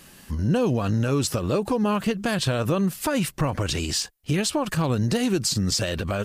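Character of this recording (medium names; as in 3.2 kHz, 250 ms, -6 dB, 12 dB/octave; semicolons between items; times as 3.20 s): noise floor -49 dBFS; spectral tilt -5.0 dB/octave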